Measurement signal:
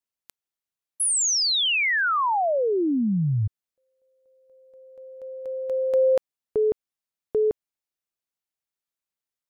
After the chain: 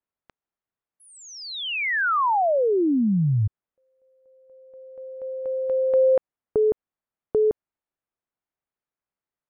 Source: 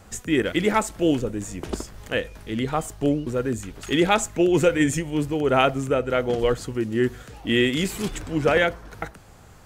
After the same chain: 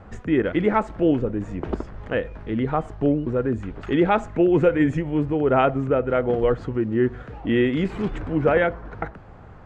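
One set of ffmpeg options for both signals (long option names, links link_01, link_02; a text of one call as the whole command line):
ffmpeg -i in.wav -filter_complex "[0:a]lowpass=1600,asplit=2[link_01][link_02];[link_02]acompressor=threshold=-31dB:ratio=6:attack=8.3:release=169:detection=peak,volume=-2dB[link_03];[link_01][link_03]amix=inputs=2:normalize=0" out.wav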